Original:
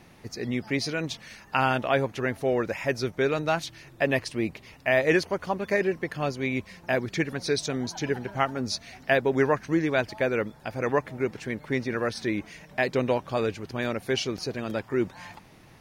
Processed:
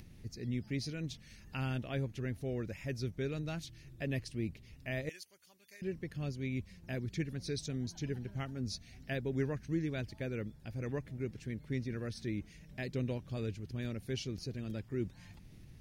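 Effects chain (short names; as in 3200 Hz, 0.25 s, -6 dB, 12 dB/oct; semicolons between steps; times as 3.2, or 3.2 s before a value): passive tone stack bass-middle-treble 10-0-1; upward compressor, threshold -57 dBFS; 5.09–5.82 differentiator; gain +9.5 dB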